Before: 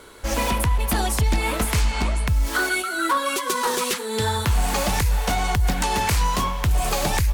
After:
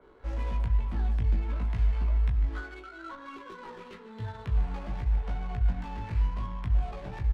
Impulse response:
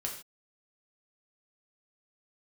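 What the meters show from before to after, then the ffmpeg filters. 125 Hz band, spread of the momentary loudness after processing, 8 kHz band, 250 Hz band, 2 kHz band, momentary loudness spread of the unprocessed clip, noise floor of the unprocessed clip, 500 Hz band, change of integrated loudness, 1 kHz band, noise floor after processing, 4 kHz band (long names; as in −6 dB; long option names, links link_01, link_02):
−6.0 dB, 15 LU, below −35 dB, −13.5 dB, −20.5 dB, 2 LU, −29 dBFS, −18.0 dB, −8.5 dB, −19.0 dB, −48 dBFS, −26.5 dB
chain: -filter_complex "[0:a]acrusher=bits=5:mode=log:mix=0:aa=0.000001,aecho=1:1:149:0.237,asplit=2[link_01][link_02];[1:a]atrim=start_sample=2205,adelay=21[link_03];[link_02][link_03]afir=irnorm=-1:irlink=0,volume=-10dB[link_04];[link_01][link_04]amix=inputs=2:normalize=0,acrossover=split=190[link_05][link_06];[link_06]acompressor=threshold=-39dB:ratio=2[link_07];[link_05][link_07]amix=inputs=2:normalize=0,lowpass=12000,flanger=delay=15.5:depth=2.1:speed=0.4,asplit=2[link_08][link_09];[link_09]adelay=18,volume=-7.5dB[link_10];[link_08][link_10]amix=inputs=2:normalize=0,adynamicsmooth=sensitivity=6:basefreq=1100,adynamicequalizer=threshold=0.00126:dfrequency=5000:dqfactor=0.7:tfrequency=5000:tqfactor=0.7:attack=5:release=100:ratio=0.375:range=3.5:mode=cutabove:tftype=highshelf,volume=-7dB"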